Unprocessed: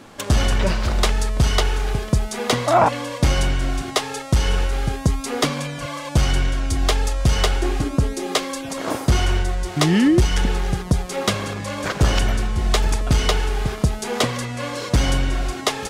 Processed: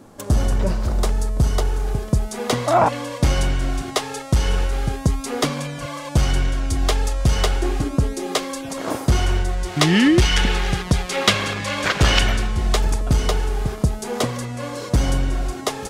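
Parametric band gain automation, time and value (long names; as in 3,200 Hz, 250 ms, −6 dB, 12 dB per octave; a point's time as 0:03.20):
parametric band 2,700 Hz 2.3 octaves
0:01.69 −12.5 dB
0:02.69 −2.5 dB
0:09.48 −2.5 dB
0:10.08 +8.5 dB
0:12.21 +8.5 dB
0:12.46 +2.5 dB
0:12.97 −6.5 dB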